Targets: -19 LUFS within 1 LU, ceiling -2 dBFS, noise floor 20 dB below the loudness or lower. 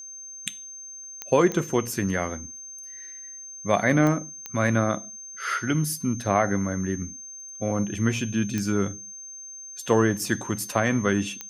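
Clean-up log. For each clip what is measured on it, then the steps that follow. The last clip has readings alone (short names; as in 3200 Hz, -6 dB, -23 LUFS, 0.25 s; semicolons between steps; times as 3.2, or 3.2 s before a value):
clicks 6; steady tone 6300 Hz; tone level -38 dBFS; loudness -25.5 LUFS; peak -7.0 dBFS; loudness target -19.0 LUFS
-> de-click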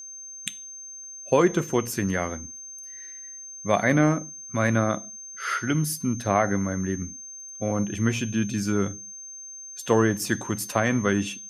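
clicks 0; steady tone 6300 Hz; tone level -38 dBFS
-> notch 6300 Hz, Q 30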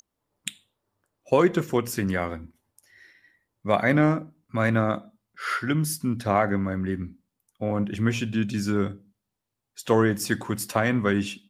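steady tone none; loudness -25.0 LUFS; peak -7.0 dBFS; loudness target -19.0 LUFS
-> gain +6 dB; limiter -2 dBFS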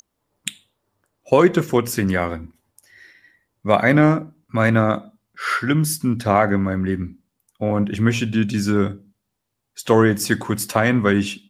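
loudness -19.5 LUFS; peak -2.0 dBFS; noise floor -77 dBFS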